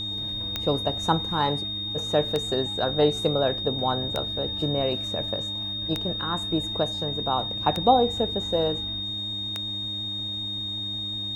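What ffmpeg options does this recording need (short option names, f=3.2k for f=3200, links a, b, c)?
-af "adeclick=t=4,bandreject=f=102.7:t=h:w=4,bandreject=f=205.4:t=h:w=4,bandreject=f=308.1:t=h:w=4,bandreject=f=3.7k:w=30"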